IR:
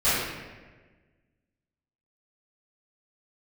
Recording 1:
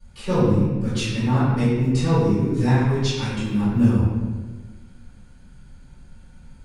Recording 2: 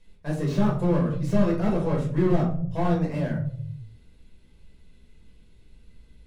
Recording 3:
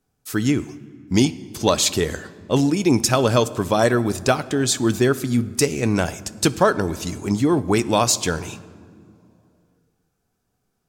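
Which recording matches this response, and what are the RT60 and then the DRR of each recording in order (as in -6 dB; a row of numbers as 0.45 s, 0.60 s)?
1; 1.4 s, 0.60 s, no single decay rate; -17.5 dB, -3.0 dB, 14.0 dB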